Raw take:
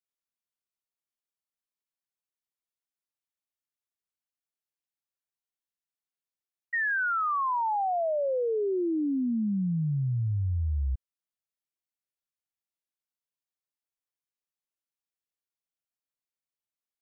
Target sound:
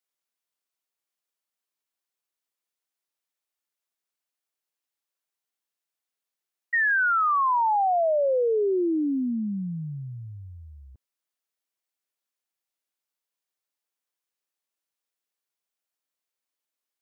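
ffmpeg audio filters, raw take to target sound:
-af "highpass=280,volume=5.5dB"

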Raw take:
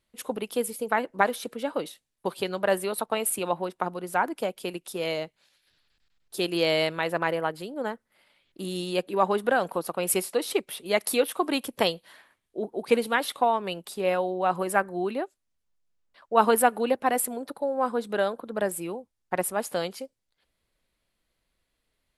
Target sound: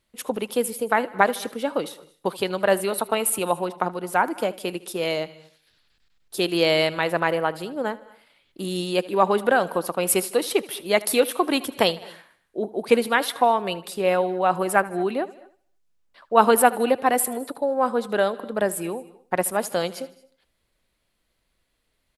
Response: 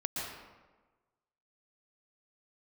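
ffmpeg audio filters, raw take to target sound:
-filter_complex "[0:a]aecho=1:1:77|154|231|308:0.1|0.053|0.0281|0.0149,asplit=2[a][b];[1:a]atrim=start_sample=2205,afade=t=out:st=0.18:d=0.01,atrim=end_sample=8379,asetrate=24255,aresample=44100[c];[b][c]afir=irnorm=-1:irlink=0,volume=-23dB[d];[a][d]amix=inputs=2:normalize=0,volume=3.5dB"

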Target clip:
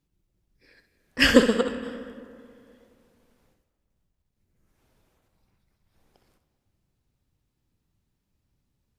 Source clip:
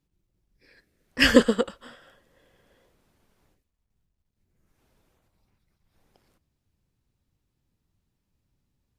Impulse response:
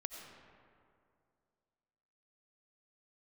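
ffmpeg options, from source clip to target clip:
-filter_complex "[0:a]asplit=2[a][b];[1:a]atrim=start_sample=2205,adelay=65[c];[b][c]afir=irnorm=-1:irlink=0,volume=-6.5dB[d];[a][d]amix=inputs=2:normalize=0"

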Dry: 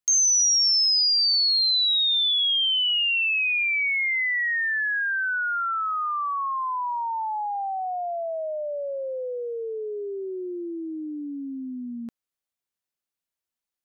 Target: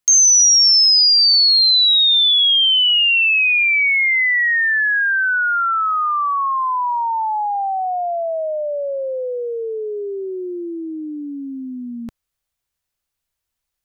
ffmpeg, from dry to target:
-af "asubboost=boost=6:cutoff=91,volume=8.5dB"

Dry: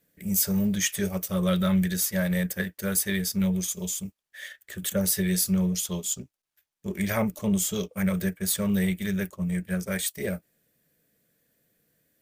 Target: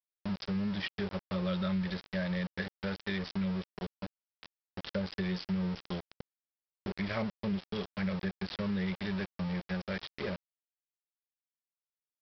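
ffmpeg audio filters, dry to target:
-af "aresample=11025,aeval=exprs='val(0)*gte(abs(val(0)),0.0299)':c=same,aresample=44100,acompressor=threshold=-32dB:ratio=2,volume=-2.5dB"

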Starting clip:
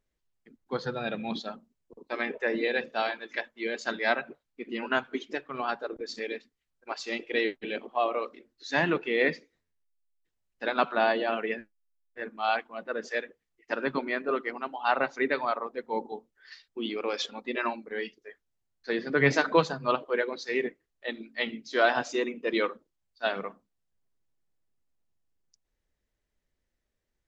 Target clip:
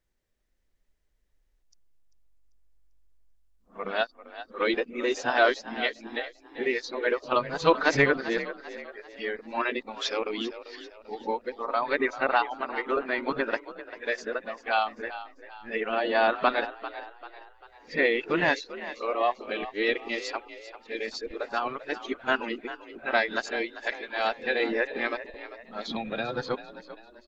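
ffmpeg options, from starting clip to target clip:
-filter_complex "[0:a]areverse,asplit=5[a][b][c][d][e];[b]adelay=393,afreqshift=47,volume=-14dB[f];[c]adelay=786,afreqshift=94,volume=-21.5dB[g];[d]adelay=1179,afreqshift=141,volume=-29.1dB[h];[e]adelay=1572,afreqshift=188,volume=-36.6dB[i];[a][f][g][h][i]amix=inputs=5:normalize=0,asubboost=boost=7.5:cutoff=51,volume=2dB"

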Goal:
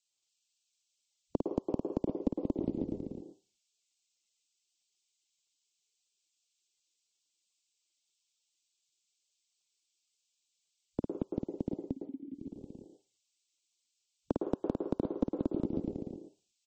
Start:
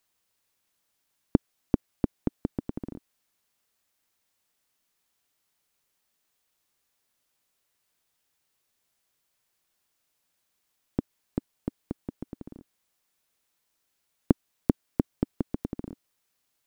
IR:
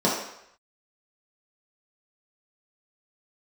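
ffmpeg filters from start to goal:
-filter_complex "[0:a]asettb=1/sr,asplit=3[a][b][c];[a]atrim=end=2.474[d];[b]atrim=start=2.47:end=2.95,asetpts=PTS-STARTPTS,afade=t=in:d=0.004:c=qsin,afade=t=out:st=0.476:d=0.004:c=qsin,bandreject=f=50:t=h:w=6,bandreject=f=100:t=h:w=6,bandreject=f=150:t=h:w=6,bandreject=f=200:t=h:w=6[e];[c]atrim=start=2.946[f];[d][e]acrossfade=d=0.004:c1=hsin:c2=qsin[g];[g][f]acrossfade=d=0.004:c1=qsin:c2=hsin,afwtdn=0.00708,bandreject=f=1.8k:w=12,acrossover=split=210[h][i];[h]lowshelf=f=77:g=-6.5[j];[i]aexciter=amount=14.4:drive=2:freq=2.5k[k];[j][k]amix=inputs=2:normalize=0,acompressor=threshold=-25dB:ratio=16,asplit=3[l][m][n];[l]afade=t=out:st=11.82:d=0.02[o];[m]asplit=3[p][q][r];[p]bandpass=f=270:t=q:w=8,volume=0dB[s];[q]bandpass=f=2.29k:t=q:w=8,volume=-6dB[t];[r]bandpass=f=3.01k:t=q:w=8,volume=-9dB[u];[s][t][u]amix=inputs=3:normalize=0,afade=t=in:st=11.82:d=0.02,afade=t=out:st=12.33:d=0.02[v];[n]afade=t=in:st=12.33:d=0.02[w];[o][v][w]amix=inputs=3:normalize=0,tiltshelf=f=1.3k:g=3.5,aecho=1:1:52.48|227.4:0.631|1,asplit=2[x][y];[1:a]atrim=start_sample=2205,asetrate=83790,aresample=44100,adelay=107[z];[y][z]afir=irnorm=-1:irlink=0,volume=-18.5dB[aa];[x][aa]amix=inputs=2:normalize=0,volume=-6dB" -ar 44100 -c:a libmp3lame -b:a 32k

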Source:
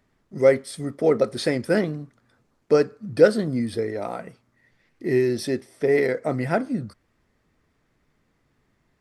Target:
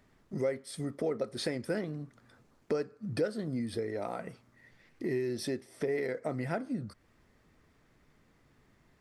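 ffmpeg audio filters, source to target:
-af "acompressor=threshold=-37dB:ratio=3,volume=2dB"

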